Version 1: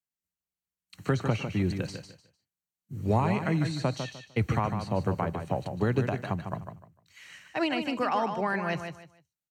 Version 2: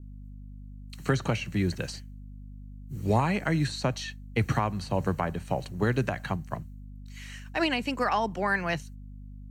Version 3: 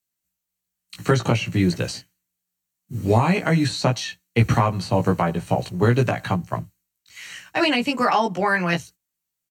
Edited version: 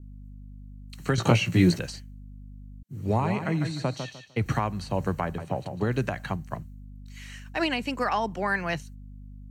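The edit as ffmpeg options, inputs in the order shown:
-filter_complex "[0:a]asplit=2[a][b];[1:a]asplit=4[c][d][e][f];[c]atrim=end=1.182[g];[2:a]atrim=start=1.178:end=1.792[h];[d]atrim=start=1.788:end=2.832[i];[a]atrim=start=2.828:end=4.462[j];[e]atrim=start=4.458:end=5.382[k];[b]atrim=start=5.378:end=5.912[l];[f]atrim=start=5.908[m];[g][h]acrossfade=d=0.004:c1=hsin:c2=hsin[n];[n][i]acrossfade=d=0.004:c1=hsin:c2=hsin[o];[o][j]acrossfade=d=0.004:c1=hsin:c2=hsin[p];[p][k]acrossfade=d=0.004:c1=hsin:c2=hsin[q];[q][l]acrossfade=d=0.004:c1=hsin:c2=hsin[r];[r][m]acrossfade=d=0.004:c1=hsin:c2=hsin"

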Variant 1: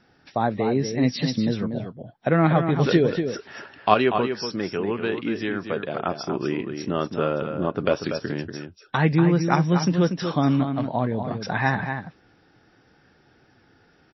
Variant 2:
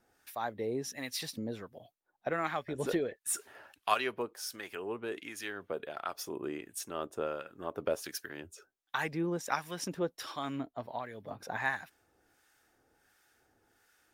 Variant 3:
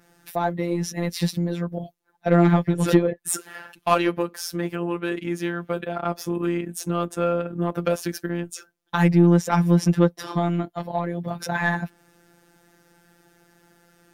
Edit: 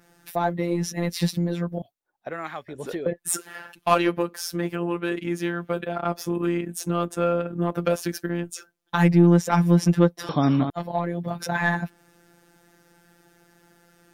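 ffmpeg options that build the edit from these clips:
-filter_complex "[2:a]asplit=3[a][b][c];[a]atrim=end=1.822[d];[1:a]atrim=start=1.818:end=3.062[e];[b]atrim=start=3.058:end=10.292[f];[0:a]atrim=start=10.288:end=10.702[g];[c]atrim=start=10.698[h];[d][e]acrossfade=d=0.004:c1=hsin:c2=hsin[i];[i][f]acrossfade=d=0.004:c1=hsin:c2=hsin[j];[j][g]acrossfade=d=0.004:c1=hsin:c2=hsin[k];[k][h]acrossfade=d=0.004:c1=hsin:c2=hsin"

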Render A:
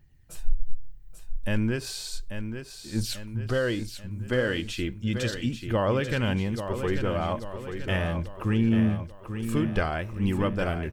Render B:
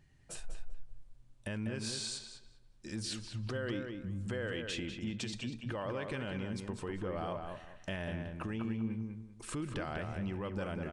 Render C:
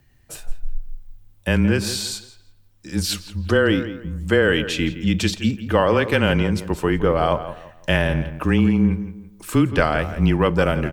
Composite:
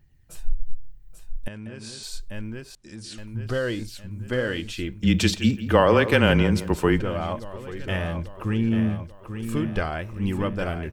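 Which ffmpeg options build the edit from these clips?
-filter_complex "[1:a]asplit=2[a][b];[0:a]asplit=4[c][d][e][f];[c]atrim=end=1.482[g];[a]atrim=start=1.478:end=2.032[h];[d]atrim=start=2.028:end=2.752[i];[b]atrim=start=2.748:end=3.182[j];[e]atrim=start=3.178:end=5.032[k];[2:a]atrim=start=5.028:end=7.002[l];[f]atrim=start=6.998[m];[g][h]acrossfade=d=0.004:c1=hsin:c2=hsin[n];[n][i]acrossfade=d=0.004:c1=hsin:c2=hsin[o];[o][j]acrossfade=d=0.004:c1=hsin:c2=hsin[p];[p][k]acrossfade=d=0.004:c1=hsin:c2=hsin[q];[q][l]acrossfade=d=0.004:c1=hsin:c2=hsin[r];[r][m]acrossfade=d=0.004:c1=hsin:c2=hsin"

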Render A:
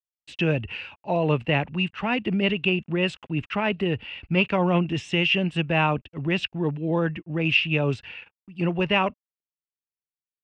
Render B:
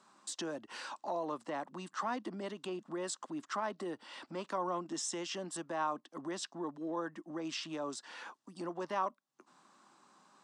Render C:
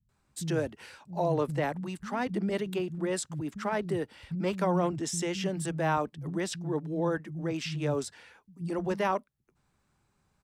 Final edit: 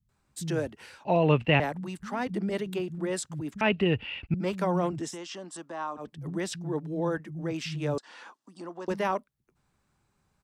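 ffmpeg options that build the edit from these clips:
-filter_complex "[0:a]asplit=2[a][b];[1:a]asplit=2[c][d];[2:a]asplit=5[e][f][g][h][i];[e]atrim=end=1.052[j];[a]atrim=start=1.048:end=1.602[k];[f]atrim=start=1.598:end=3.612[l];[b]atrim=start=3.608:end=4.342[m];[g]atrim=start=4.338:end=5.18[n];[c]atrim=start=5.02:end=6.12[o];[h]atrim=start=5.96:end=7.982[p];[d]atrim=start=7.978:end=8.882[q];[i]atrim=start=8.878[r];[j][k]acrossfade=d=0.004:c1=hsin:c2=hsin[s];[s][l]acrossfade=d=0.004:c1=hsin:c2=hsin[t];[t][m]acrossfade=d=0.004:c1=hsin:c2=hsin[u];[u][n]acrossfade=d=0.004:c1=hsin:c2=hsin[v];[v][o]acrossfade=d=0.16:c1=tri:c2=tri[w];[w][p]acrossfade=d=0.16:c1=tri:c2=tri[x];[x][q]acrossfade=d=0.004:c1=hsin:c2=hsin[y];[y][r]acrossfade=d=0.004:c1=hsin:c2=hsin"

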